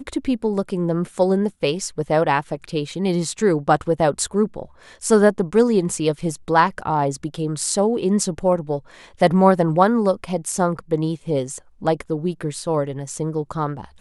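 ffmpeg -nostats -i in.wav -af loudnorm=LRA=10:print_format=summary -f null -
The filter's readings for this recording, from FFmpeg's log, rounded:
Input Integrated:    -21.3 LUFS
Input True Peak:      -1.1 dBTP
Input LRA:             6.0 LU
Input Threshold:     -31.4 LUFS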